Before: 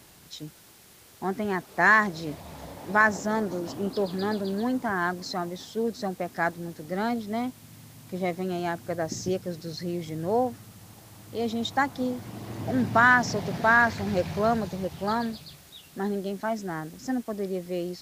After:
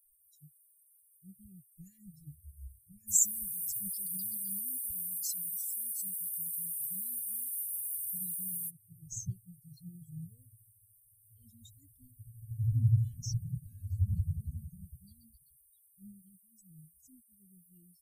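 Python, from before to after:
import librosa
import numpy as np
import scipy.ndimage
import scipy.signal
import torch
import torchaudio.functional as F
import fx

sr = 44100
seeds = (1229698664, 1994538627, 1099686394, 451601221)

y = fx.high_shelf(x, sr, hz=3400.0, db=10.0, at=(3.07, 8.69), fade=0.02)
y = fx.bin_expand(y, sr, power=3.0)
y = scipy.signal.sosfilt(scipy.signal.cheby1(4, 1.0, [120.0, 7700.0], 'bandstop', fs=sr, output='sos'), y)
y = fx.high_shelf(y, sr, hz=6800.0, db=5.5)
y = F.gain(torch.from_numpy(y), 15.5).numpy()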